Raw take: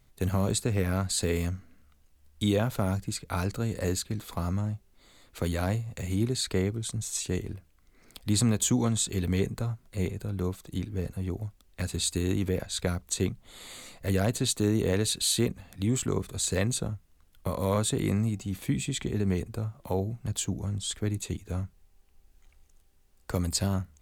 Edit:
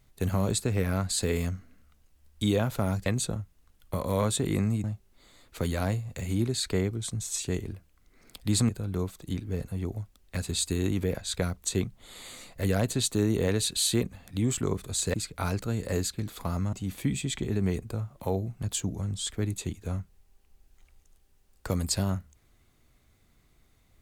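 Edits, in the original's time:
3.06–4.65 swap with 16.59–18.37
8.5–10.14 cut

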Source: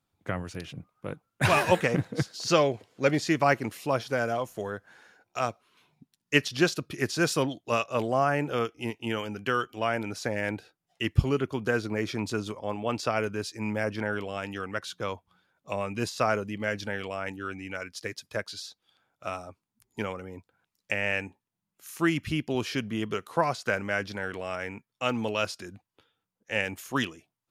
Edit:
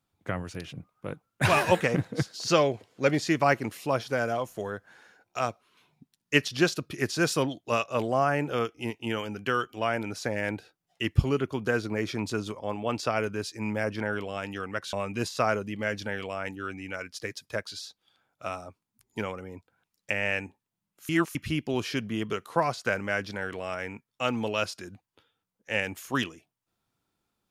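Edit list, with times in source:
14.93–15.74 cut
21.9–22.16 reverse

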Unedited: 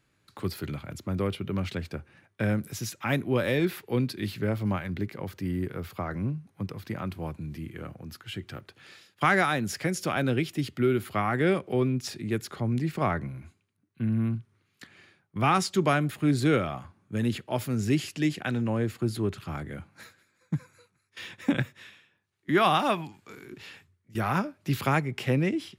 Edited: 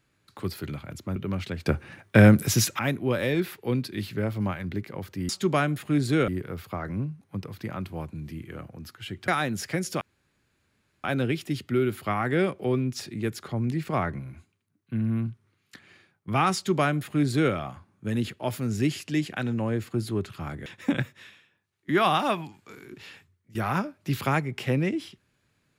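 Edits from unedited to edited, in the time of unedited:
1.16–1.41 cut
1.91–3.04 gain +12 dB
8.54–9.39 cut
10.12 insert room tone 1.03 s
15.62–16.61 copy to 5.54
19.74–21.26 cut

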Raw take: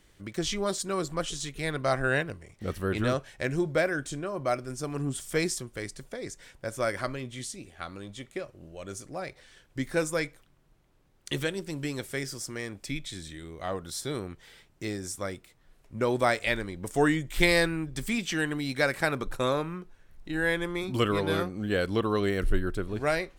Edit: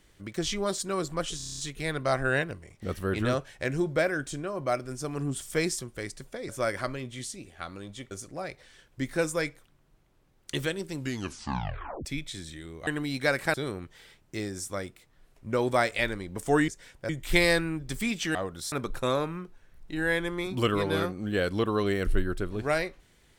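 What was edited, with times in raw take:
1.37 stutter 0.03 s, 8 plays
6.28–6.69 move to 17.16
8.31–8.89 cut
11.75 tape stop 1.08 s
13.65–14.02 swap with 18.42–19.09

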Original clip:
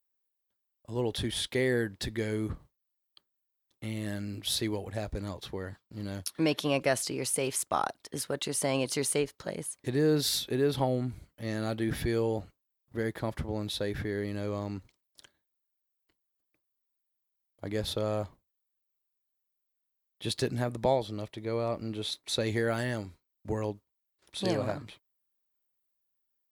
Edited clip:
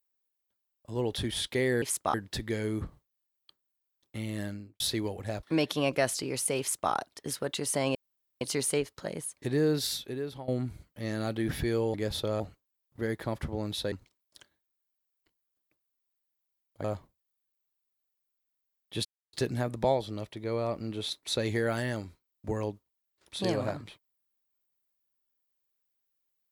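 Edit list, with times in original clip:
4.09–4.48 studio fade out
5.11–6.31 cut
7.48–7.8 copy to 1.82
8.83 insert room tone 0.46 s
9.99–10.9 fade out, to -17.5 dB
13.88–14.75 cut
17.67–18.13 move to 12.36
20.34 insert silence 0.28 s

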